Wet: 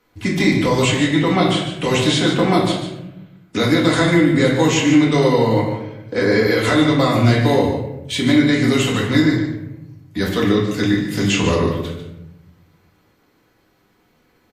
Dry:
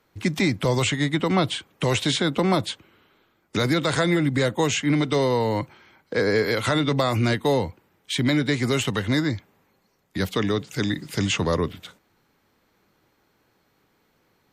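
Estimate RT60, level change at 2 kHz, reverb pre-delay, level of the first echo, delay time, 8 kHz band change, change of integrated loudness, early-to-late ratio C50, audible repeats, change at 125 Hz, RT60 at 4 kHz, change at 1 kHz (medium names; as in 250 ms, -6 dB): 0.95 s, +6.0 dB, 4 ms, -8.5 dB, 146 ms, +4.5 dB, +6.5 dB, 3.5 dB, 1, +6.0 dB, 0.60 s, +6.0 dB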